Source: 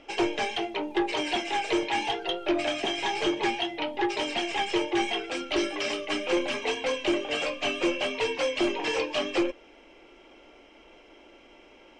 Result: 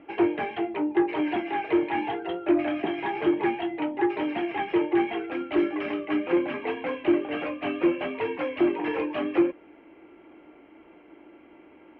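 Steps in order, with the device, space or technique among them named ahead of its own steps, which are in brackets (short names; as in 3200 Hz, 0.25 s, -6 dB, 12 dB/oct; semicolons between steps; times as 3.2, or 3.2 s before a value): bass cabinet (speaker cabinet 76–2200 Hz, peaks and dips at 85 Hz +5 dB, 170 Hz +7 dB, 310 Hz +9 dB, 540 Hz -4 dB)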